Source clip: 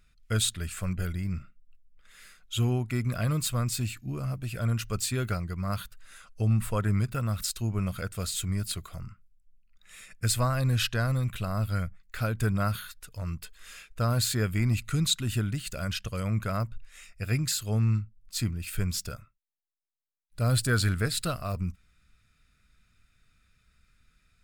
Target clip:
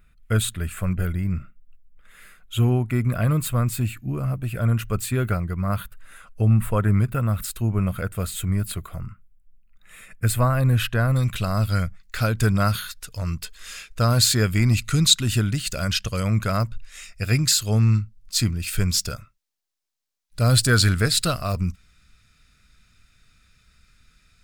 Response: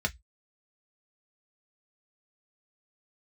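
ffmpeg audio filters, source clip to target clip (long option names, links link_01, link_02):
-af "asetnsamples=nb_out_samples=441:pad=0,asendcmd='11.16 equalizer g 5',equalizer=frequency=5300:width_type=o:width=1.3:gain=-13,volume=7dB"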